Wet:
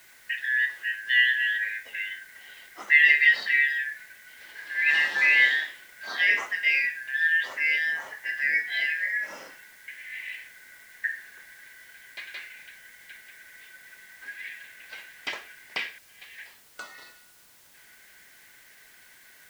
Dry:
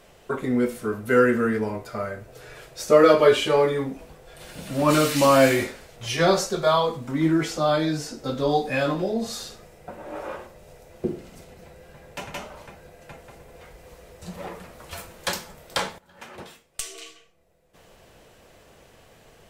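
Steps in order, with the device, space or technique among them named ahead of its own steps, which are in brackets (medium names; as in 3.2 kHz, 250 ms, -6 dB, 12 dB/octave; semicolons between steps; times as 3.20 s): split-band scrambled radio (four frequency bands reordered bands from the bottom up 4123; band-pass 340–2900 Hz; white noise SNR 28 dB); trim -2.5 dB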